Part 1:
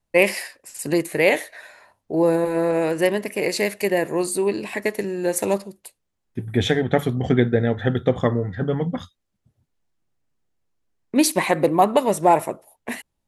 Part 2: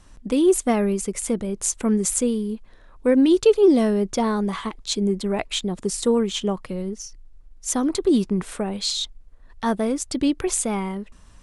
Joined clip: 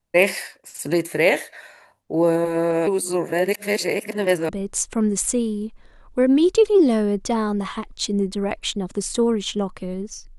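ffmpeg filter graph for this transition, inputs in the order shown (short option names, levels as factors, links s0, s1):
-filter_complex "[0:a]apad=whole_dur=10.38,atrim=end=10.38,asplit=2[s0][s1];[s0]atrim=end=2.872[s2];[s1]atrim=start=2.868:end=4.492,asetpts=PTS-STARTPTS,areverse[s3];[1:a]atrim=start=1.368:end=7.26[s4];[s2][s3]acrossfade=d=0.004:c1=hsin:c2=hsin[s5];[s5][s4]acrossfade=d=0.004:c1=hsin:c2=hsin"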